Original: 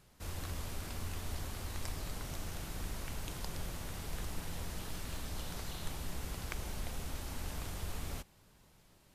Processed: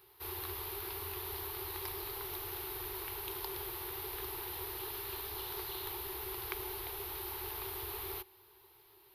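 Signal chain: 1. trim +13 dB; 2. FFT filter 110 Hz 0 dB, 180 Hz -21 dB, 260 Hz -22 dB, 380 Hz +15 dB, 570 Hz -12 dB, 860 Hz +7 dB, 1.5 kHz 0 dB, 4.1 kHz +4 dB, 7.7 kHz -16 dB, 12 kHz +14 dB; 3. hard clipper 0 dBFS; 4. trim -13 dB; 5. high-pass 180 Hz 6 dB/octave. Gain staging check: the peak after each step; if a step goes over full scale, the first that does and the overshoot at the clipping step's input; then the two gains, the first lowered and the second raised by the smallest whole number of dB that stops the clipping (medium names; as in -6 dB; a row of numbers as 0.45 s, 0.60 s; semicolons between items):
-7.5 dBFS, -5.5 dBFS, -5.5 dBFS, -18.5 dBFS, -17.5 dBFS; nothing clips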